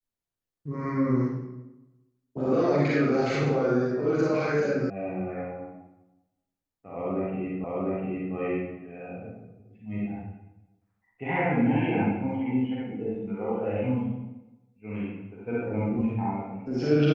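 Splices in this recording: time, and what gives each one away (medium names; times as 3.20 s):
4.90 s: sound stops dead
7.64 s: repeat of the last 0.7 s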